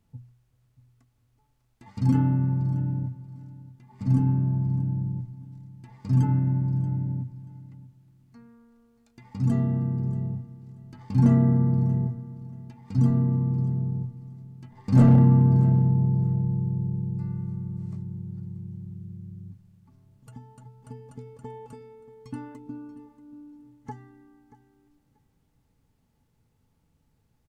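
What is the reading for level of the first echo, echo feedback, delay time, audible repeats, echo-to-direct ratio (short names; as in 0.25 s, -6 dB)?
-17.5 dB, 22%, 0.633 s, 2, -17.5 dB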